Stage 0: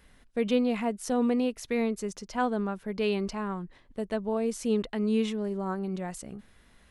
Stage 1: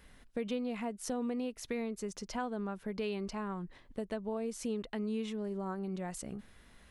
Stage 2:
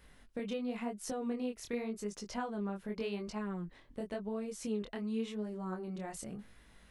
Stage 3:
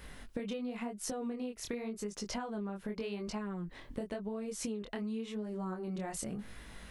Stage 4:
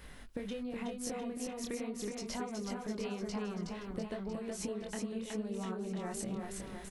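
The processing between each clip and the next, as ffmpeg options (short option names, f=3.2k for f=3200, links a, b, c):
-af "acompressor=threshold=-36dB:ratio=3"
-af "flanger=delay=18.5:depth=7.2:speed=0.91,volume=1.5dB"
-af "acompressor=threshold=-46dB:ratio=10,volume=10.5dB"
-af "aecho=1:1:370|703|1003|1272|1515:0.631|0.398|0.251|0.158|0.1,volume=-2dB"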